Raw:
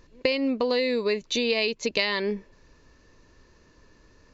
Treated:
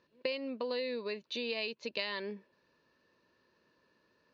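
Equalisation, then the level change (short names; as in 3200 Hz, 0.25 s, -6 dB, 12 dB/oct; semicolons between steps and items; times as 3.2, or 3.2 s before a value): speaker cabinet 250–4300 Hz, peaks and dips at 290 Hz -7 dB, 430 Hz -5 dB, 750 Hz -6 dB, 1200 Hz -4 dB, 2100 Hz -7 dB, 3400 Hz -3 dB; -7.5 dB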